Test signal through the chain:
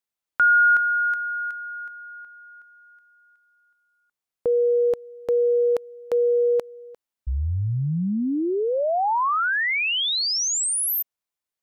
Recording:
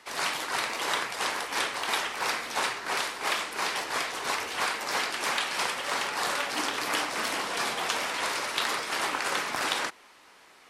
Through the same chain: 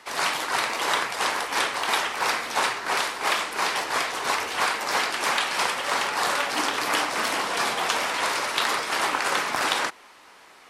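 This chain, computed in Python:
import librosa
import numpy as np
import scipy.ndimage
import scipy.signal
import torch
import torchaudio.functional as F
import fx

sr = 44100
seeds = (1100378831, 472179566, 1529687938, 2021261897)

y = fx.peak_eq(x, sr, hz=930.0, db=2.5, octaves=1.6)
y = F.gain(torch.from_numpy(y), 3.5).numpy()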